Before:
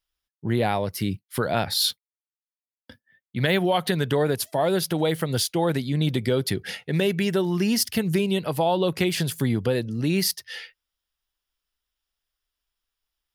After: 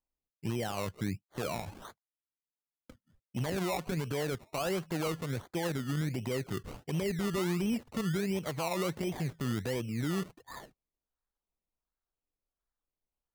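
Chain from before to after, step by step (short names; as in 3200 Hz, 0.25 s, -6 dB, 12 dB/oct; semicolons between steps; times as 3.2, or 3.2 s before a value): LPF 2300 Hz 24 dB/oct; limiter -19 dBFS, peak gain reduction 10.5 dB; decimation with a swept rate 22×, swing 60% 1.4 Hz; gain -6 dB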